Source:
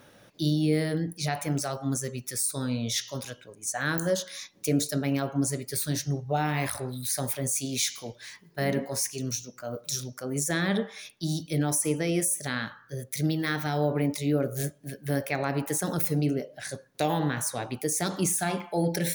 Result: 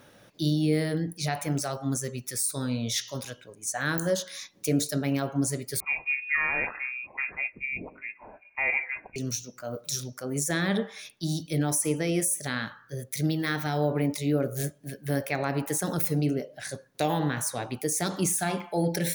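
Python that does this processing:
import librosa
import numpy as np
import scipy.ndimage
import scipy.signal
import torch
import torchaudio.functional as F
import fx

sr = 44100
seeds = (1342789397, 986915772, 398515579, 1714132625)

y = fx.freq_invert(x, sr, carrier_hz=2600, at=(5.8, 9.16))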